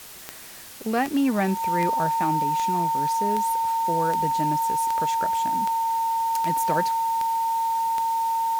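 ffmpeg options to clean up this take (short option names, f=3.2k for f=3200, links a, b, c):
-af "adeclick=t=4,bandreject=f=910:w=30,afwtdn=0.0079"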